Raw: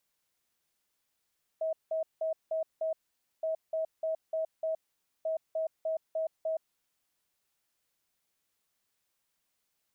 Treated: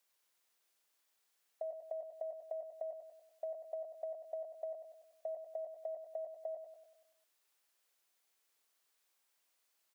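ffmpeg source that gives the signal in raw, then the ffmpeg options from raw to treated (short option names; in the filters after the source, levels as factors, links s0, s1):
-f lavfi -i "aevalsrc='0.0376*sin(2*PI*641*t)*clip(min(mod(mod(t,1.82),0.3),0.12-mod(mod(t,1.82),0.3))/0.005,0,1)*lt(mod(t,1.82),1.5)':d=5.46:s=44100"
-filter_complex "[0:a]highpass=390,acompressor=threshold=0.01:ratio=6,asplit=2[s0][s1];[s1]aecho=0:1:96|192|288|384|480|576|672:0.422|0.228|0.123|0.0664|0.0359|0.0194|0.0105[s2];[s0][s2]amix=inputs=2:normalize=0"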